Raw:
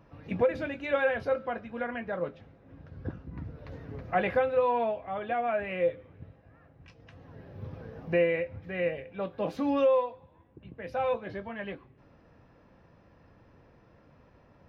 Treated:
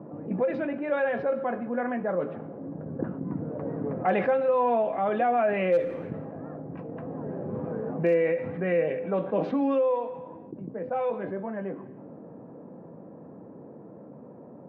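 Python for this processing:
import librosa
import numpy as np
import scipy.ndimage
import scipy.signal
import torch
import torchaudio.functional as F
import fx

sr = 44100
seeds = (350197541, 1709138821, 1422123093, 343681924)

p1 = fx.doppler_pass(x, sr, speed_mps=7, closest_m=9.0, pass_at_s=6.31)
p2 = scipy.signal.sosfilt(scipy.signal.butter(4, 170.0, 'highpass', fs=sr, output='sos'), p1)
p3 = fx.env_lowpass(p2, sr, base_hz=640.0, full_db=-33.0)
p4 = fx.lowpass(p3, sr, hz=1000.0, slope=6)
p5 = fx.rider(p4, sr, range_db=4, speed_s=0.5)
p6 = p4 + (p5 * librosa.db_to_amplitude(2.5))
p7 = np.clip(p6, -10.0 ** (-16.5 / 20.0), 10.0 ** (-16.5 / 20.0))
p8 = fx.rev_schroeder(p7, sr, rt60_s=0.81, comb_ms=26, drr_db=18.0)
y = fx.env_flatten(p8, sr, amount_pct=50)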